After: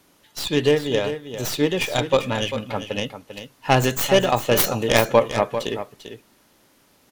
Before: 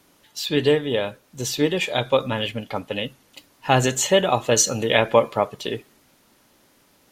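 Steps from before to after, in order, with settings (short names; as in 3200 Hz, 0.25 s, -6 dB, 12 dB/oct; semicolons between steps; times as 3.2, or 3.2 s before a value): tracing distortion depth 0.26 ms; on a send: echo 0.395 s -10.5 dB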